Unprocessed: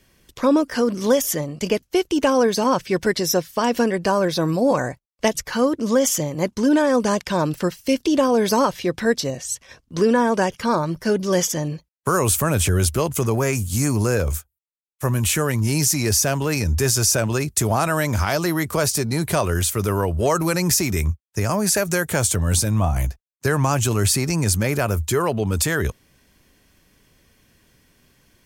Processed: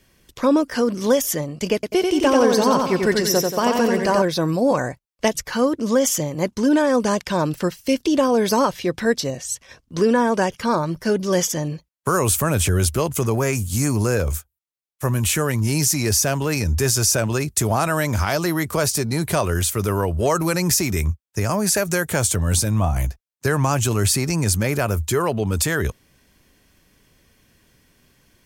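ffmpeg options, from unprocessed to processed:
ffmpeg -i in.wav -filter_complex "[0:a]asettb=1/sr,asplit=3[link_01][link_02][link_03];[link_01]atrim=end=1.744[link_04];[link_02]atrim=start=1.74:end=4.22,asetpts=PTS-STARTPTS,afade=type=in:duration=0.004:curve=qsin,afade=type=out:start_time=2.476:duration=0.004:curve=qsin,aecho=1:1:90|180|270|360|450|540:0.668|0.301|0.135|0.0609|0.0274|0.0123,atrim=end_sample=109368[link_05];[link_03]atrim=start=4.216[link_06];[link_04][link_05]acrossfade=duration=0.004:curve1=hsin:curve2=qsin[link_07];[link_07][link_06]acrossfade=duration=0.004:curve1=qsin:curve2=hsin" out.wav

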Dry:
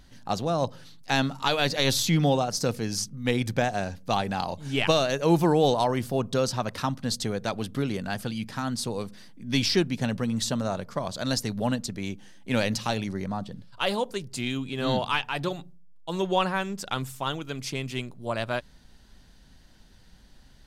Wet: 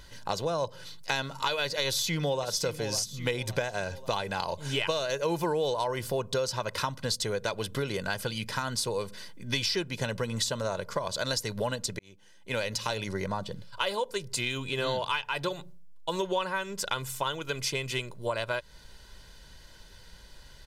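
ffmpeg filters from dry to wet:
ffmpeg -i in.wav -filter_complex "[0:a]asplit=2[link_01][link_02];[link_02]afade=type=in:start_time=1.87:duration=0.01,afade=type=out:start_time=2.47:duration=0.01,aecho=0:1:550|1100|1650|2200:0.199526|0.0798105|0.0319242|0.0127697[link_03];[link_01][link_03]amix=inputs=2:normalize=0,asplit=2[link_04][link_05];[link_04]atrim=end=11.99,asetpts=PTS-STARTPTS,afade=type=out:start_time=11.986:duration=0.004:curve=hsin[link_06];[link_05]atrim=start=11.99,asetpts=PTS-STARTPTS,afade=type=in:duration=1.19[link_07];[link_06][link_07]concat=n=2:v=0:a=1,lowshelf=frequency=380:gain=-7,aecho=1:1:2:0.58,acompressor=threshold=-34dB:ratio=4,volume=6dB" out.wav

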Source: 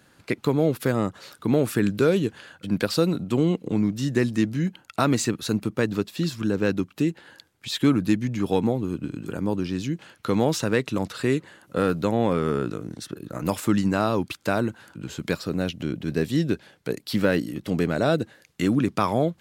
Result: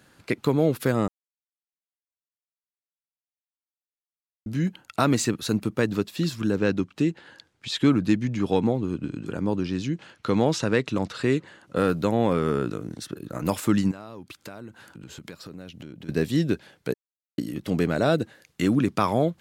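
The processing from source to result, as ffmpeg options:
ffmpeg -i in.wav -filter_complex "[0:a]asettb=1/sr,asplit=3[link_01][link_02][link_03];[link_01]atrim=end=6.584[link_04];[link_02]atrim=start=6.58:end=11.76,asetpts=PTS-STARTPTS,afade=type=in:duration=0.004:curve=qsin,afade=type=out:start_time=5.176:duration=0.004:curve=qsin,lowpass=7300[link_05];[link_03]atrim=start=11.756[link_06];[link_04][link_05]acrossfade=duration=0.004:curve1=hsin:curve2=qsin[link_07];[link_07][link_06]acrossfade=duration=0.004:curve1=qsin:curve2=hsin,asettb=1/sr,asplit=3[link_08][link_09][link_10];[link_08]atrim=end=13.914[link_11];[link_09]atrim=start=13.91:end=16.09,asetpts=PTS-STARTPTS,afade=type=in:duration=0.004:curve=qsin,afade=type=out:start_time=2.176:duration=0.004:curve=qsin,acompressor=threshold=-39dB:ratio=4:attack=3.2:release=140:knee=1:detection=peak[link_12];[link_10]atrim=start=16.086[link_13];[link_11][link_12]acrossfade=duration=0.004:curve1=hsin:curve2=qsin[link_14];[link_14][link_13]acrossfade=duration=0.004:curve1=qsin:curve2=hsin,asplit=5[link_15][link_16][link_17][link_18][link_19];[link_15]atrim=end=1.08,asetpts=PTS-STARTPTS,afade=type=out:start_time=1.076:duration=0.004:curve=hsin[link_20];[link_16]atrim=start=1.08:end=4.46,asetpts=PTS-STARTPTS,volume=0[link_21];[link_17]atrim=start=4.46:end=16.94,asetpts=PTS-STARTPTS,afade=type=in:duration=0.004:curve=hsin,afade=type=out:start_time=12.476:duration=0.004:curve=hsin[link_22];[link_18]atrim=start=16.94:end=17.38,asetpts=PTS-STARTPTS,volume=0[link_23];[link_19]atrim=start=17.38,asetpts=PTS-STARTPTS,afade=type=in:duration=0.004:curve=hsin[link_24];[link_20][link_21][link_22][link_23][link_24]concat=n=5:v=0:a=1" out.wav

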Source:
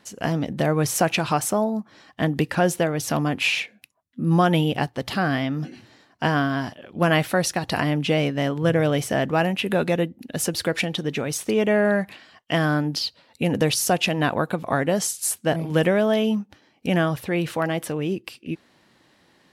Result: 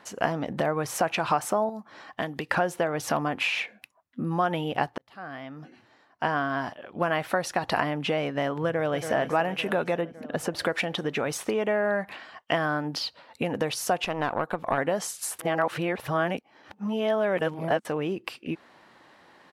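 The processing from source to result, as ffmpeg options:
ffmpeg -i in.wav -filter_complex "[0:a]asettb=1/sr,asplit=3[link_01][link_02][link_03];[link_01]atrim=end=1.694[link_04];[link_02]atrim=start=1.69:end=2.51,asetpts=PTS-STARTPTS,afade=type=in:duration=0.004:curve=qsin,afade=type=out:start_time=0.816:duration=0.004:curve=qsin,acrossover=split=2800|6000[link_05][link_06][link_07];[link_05]acompressor=threshold=-33dB:ratio=4[link_08];[link_06]acompressor=threshold=-42dB:ratio=4[link_09];[link_07]acompressor=threshold=-56dB:ratio=4[link_10];[link_08][link_09][link_10]amix=inputs=3:normalize=0[link_11];[link_03]atrim=start=2.506[link_12];[link_04][link_11]acrossfade=duration=0.004:curve1=hsin:curve2=qsin[link_13];[link_13][link_12]acrossfade=duration=0.004:curve1=qsin:curve2=hsin,asplit=2[link_14][link_15];[link_15]afade=type=in:start_time=8.64:duration=0.01,afade=type=out:start_time=9.13:duration=0.01,aecho=0:1:280|560|840|1120|1400|1680|1960|2240:0.237137|0.154139|0.100191|0.0651239|0.0423305|0.0275148|0.0178846|0.011625[link_16];[link_14][link_16]amix=inputs=2:normalize=0,asettb=1/sr,asplit=3[link_17][link_18][link_19];[link_17]atrim=end=10.014[link_20];[link_18]atrim=start=10.01:end=10.59,asetpts=PTS-STARTPTS,afade=type=in:duration=0.004:curve=qsin,afade=type=out:start_time=0.576:duration=0.004:curve=qsin,highshelf=frequency=2400:gain=-9[link_21];[link_19]atrim=start=10.586[link_22];[link_20][link_21]acrossfade=duration=0.004:curve1=hsin:curve2=qsin[link_23];[link_23][link_22]acrossfade=duration=0.004:curve1=qsin:curve2=hsin,asettb=1/sr,asplit=3[link_24][link_25][link_26];[link_24]atrim=end=14.044[link_27];[link_25]atrim=start=14.04:end=14.78,asetpts=PTS-STARTPTS,afade=type=in:duration=0.004:curve=qsin,afade=type=out:start_time=0.736:duration=0.004:curve=qsin,aeval=exprs='(tanh(5.01*val(0)+0.8)-tanh(0.8))/5.01':channel_layout=same[link_28];[link_26]atrim=start=14.776[link_29];[link_27][link_28]acrossfade=duration=0.004:curve1=hsin:curve2=qsin[link_30];[link_30][link_29]acrossfade=duration=0.004:curve1=qsin:curve2=hsin,asplit=4[link_31][link_32][link_33][link_34];[link_31]atrim=end=4.98,asetpts=PTS-STARTPTS,afade=type=out:start_time=4.976:duration=0.004:curve=hsin[link_35];[link_32]atrim=start=4.98:end=15.392,asetpts=PTS-STARTPTS,afade=type=in:duration=3.12[link_36];[link_33]atrim=start=15.388:end=17.852,asetpts=PTS-STARTPTS,areverse[link_37];[link_34]atrim=start=17.848[link_38];[link_35][link_36]concat=n=2:v=0:a=1[link_39];[link_39][link_37]acrossfade=duration=0.004:curve1=hsin:curve2=hsin[link_40];[link_40][link_38]acrossfade=duration=0.004:curve1=hsin:curve2=hsin,acompressor=threshold=-26dB:ratio=6,equalizer=frequency=1000:width_type=o:width=2.8:gain=13,volume=-4.5dB" out.wav

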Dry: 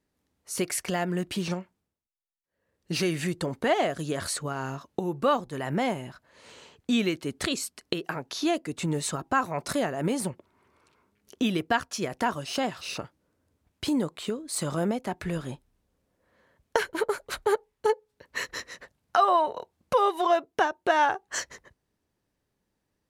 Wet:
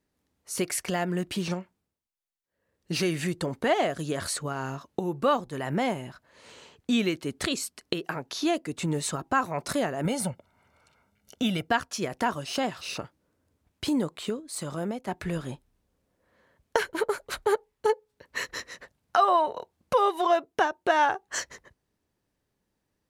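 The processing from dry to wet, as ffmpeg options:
ffmpeg -i in.wav -filter_complex "[0:a]asettb=1/sr,asplit=3[link_01][link_02][link_03];[link_01]atrim=end=10.054[link_04];[link_02]atrim=start=10.05:end=11.69,asetpts=PTS-STARTPTS,afade=type=in:duration=0.004:curve=qsin,afade=type=out:start_time=1.636:duration=0.004:curve=qsin,aecho=1:1:1.4:0.65,atrim=end_sample=72324[link_05];[link_03]atrim=start=11.686[link_06];[link_04][link_05]acrossfade=duration=0.004:curve1=hsin:curve2=qsin[link_07];[link_07][link_06]acrossfade=duration=0.004:curve1=qsin:curve2=hsin,asplit=3[link_08][link_09][link_10];[link_08]atrim=end=14.402[link_11];[link_09]atrim=start=14.398:end=15.082,asetpts=PTS-STARTPTS,volume=-4.5dB[link_12];[link_10]atrim=start=15.078[link_13];[link_11][link_12]acrossfade=duration=0.004:curve1=hsin:curve2=hsin[link_14];[link_14][link_13]acrossfade=duration=0.004:curve1=hsin:curve2=hsin" out.wav

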